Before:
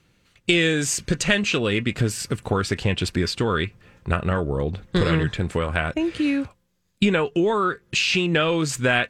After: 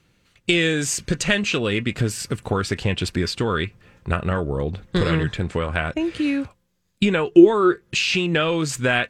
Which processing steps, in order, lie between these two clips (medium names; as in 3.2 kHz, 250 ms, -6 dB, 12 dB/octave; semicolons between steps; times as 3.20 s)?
5.43–5.99 s: low-pass 6.7 kHz -> 11 kHz 12 dB/octave; 7.27–7.81 s: peaking EQ 350 Hz +14.5 dB 0.23 oct